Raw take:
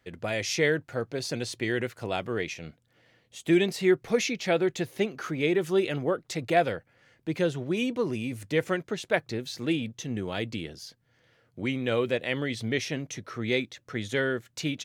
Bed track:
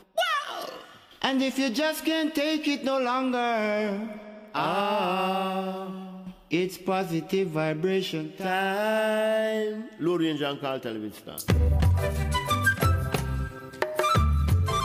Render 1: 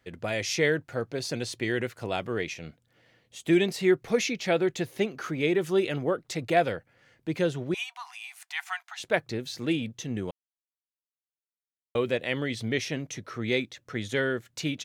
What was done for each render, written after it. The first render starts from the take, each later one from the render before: 7.74–9 brick-wall FIR high-pass 690 Hz; 10.31–11.95 mute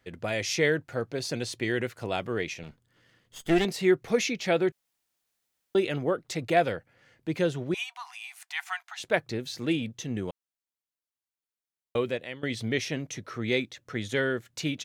2.63–3.65 minimum comb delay 0.62 ms; 4.72–5.75 room tone; 11.96–12.43 fade out, to -18.5 dB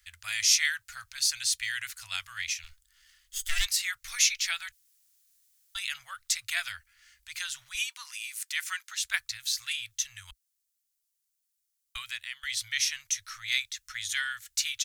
inverse Chebyshev band-stop 180–400 Hz, stop band 80 dB; tone controls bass +11 dB, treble +14 dB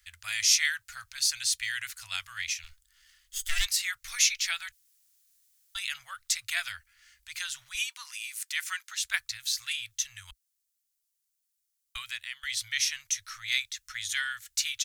nothing audible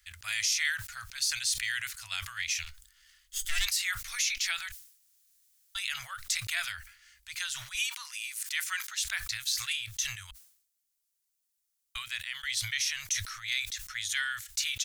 limiter -18.5 dBFS, peak gain reduction 9.5 dB; sustainer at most 91 dB/s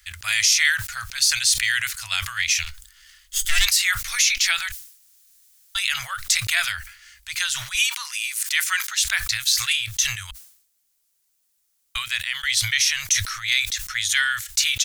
gain +11 dB

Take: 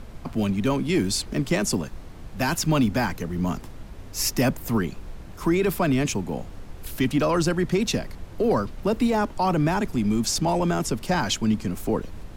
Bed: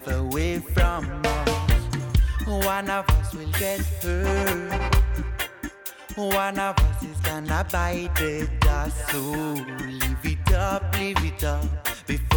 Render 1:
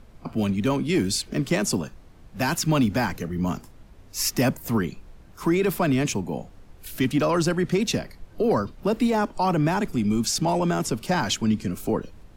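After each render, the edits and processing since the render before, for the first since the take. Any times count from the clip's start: noise print and reduce 9 dB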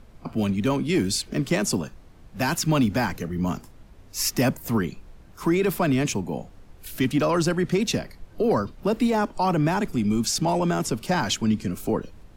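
nothing audible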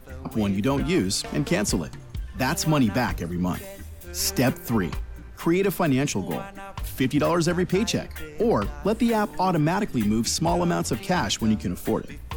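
add bed -14 dB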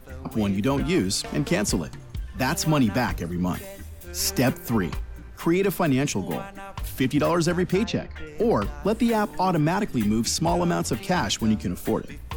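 7.84–8.27 air absorption 170 m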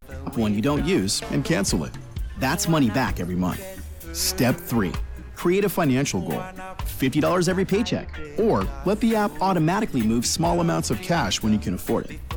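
in parallel at -6.5 dB: soft clip -28.5 dBFS, distortion -6 dB; on the sum: vibrato 0.43 Hz 95 cents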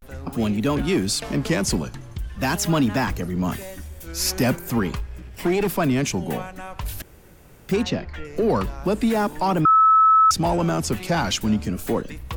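5.07–5.69 minimum comb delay 0.39 ms; 7.02–7.69 room tone; 9.65–10.31 bleep 1300 Hz -11 dBFS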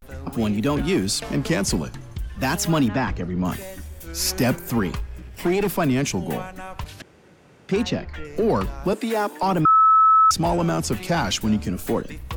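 2.88–3.45 air absorption 150 m; 6.84–7.76 BPF 130–5500 Hz; 8.93–9.43 HPF 270 Hz 24 dB/oct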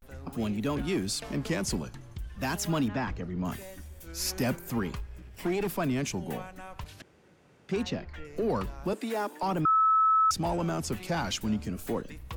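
gain -8.5 dB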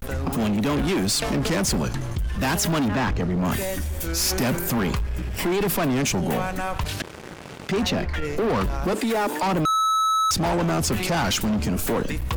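sample leveller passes 3; fast leveller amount 50%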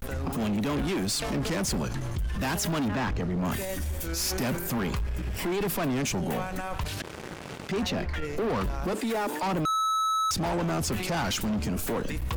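limiter -24.5 dBFS, peak gain reduction 8 dB

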